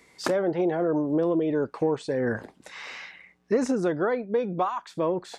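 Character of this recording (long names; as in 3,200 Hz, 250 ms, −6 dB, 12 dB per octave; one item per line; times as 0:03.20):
background noise floor −62 dBFS
spectral slope −4.0 dB per octave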